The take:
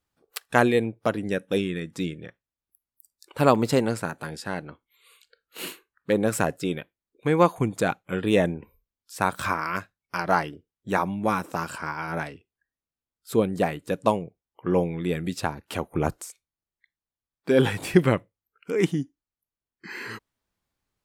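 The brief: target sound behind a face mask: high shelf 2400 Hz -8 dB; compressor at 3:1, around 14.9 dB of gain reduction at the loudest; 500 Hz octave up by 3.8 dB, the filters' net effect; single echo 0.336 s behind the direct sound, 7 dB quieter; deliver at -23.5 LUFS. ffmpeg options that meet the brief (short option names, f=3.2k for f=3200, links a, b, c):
-af "equalizer=f=500:t=o:g=5,acompressor=threshold=-31dB:ratio=3,highshelf=f=2.4k:g=-8,aecho=1:1:336:0.447,volume=11.5dB"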